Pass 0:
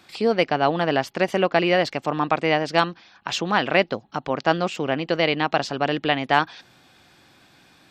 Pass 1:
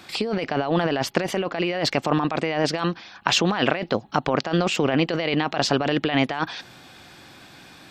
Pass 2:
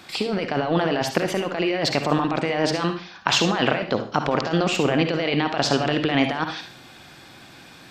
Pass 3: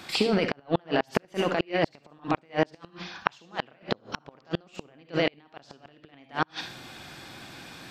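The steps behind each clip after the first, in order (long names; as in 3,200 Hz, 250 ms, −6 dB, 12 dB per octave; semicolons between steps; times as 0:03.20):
compressor whose output falls as the input rises −26 dBFS, ratio −1; level +3.5 dB
convolution reverb RT60 0.40 s, pre-delay 48 ms, DRR 6.5 dB
gate with flip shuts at −11 dBFS, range −35 dB; level +1 dB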